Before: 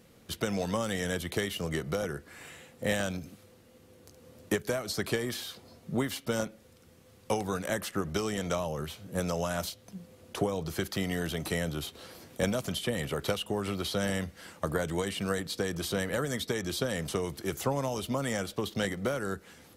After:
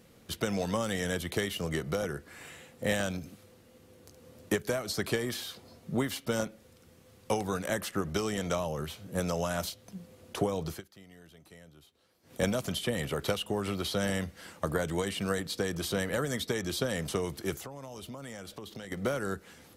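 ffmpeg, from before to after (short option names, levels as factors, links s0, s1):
-filter_complex "[0:a]asettb=1/sr,asplit=3[s0][s1][s2];[s0]atrim=end=17.544[s3];[s1]atrim=start=17.54:end=18.92,asetpts=PTS-STARTPTS,afade=t=in:d=0.004:c=qsin,afade=t=out:st=1.376:d=0.004:c=qsin,acompressor=threshold=0.01:ratio=6:attack=3.2:release=140:knee=1:detection=peak[s4];[s2]atrim=start=18.916[s5];[s3][s4]acrossfade=d=0.004:c1=hsin:c2=qsin[s6];[s6][s5]acrossfade=d=0.004:c1=qsin:c2=hsin,asplit=3[s7][s8][s9];[s7]atrim=end=10.82,asetpts=PTS-STARTPTS,afade=t=out:st=10.7:d=0.12:silence=0.0794328[s10];[s8]atrim=start=10.82:end=12.23,asetpts=PTS-STARTPTS,volume=0.0794[s11];[s9]atrim=start=12.23,asetpts=PTS-STARTPTS,afade=t=in:d=0.12:silence=0.0794328[s12];[s10][s11][s12]concat=n=3:v=0:a=1"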